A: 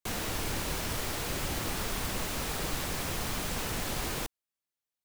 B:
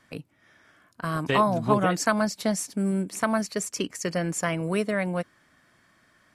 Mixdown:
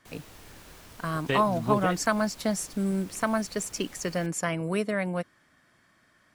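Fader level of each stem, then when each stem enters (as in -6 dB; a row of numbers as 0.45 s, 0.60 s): -16.0 dB, -2.0 dB; 0.00 s, 0.00 s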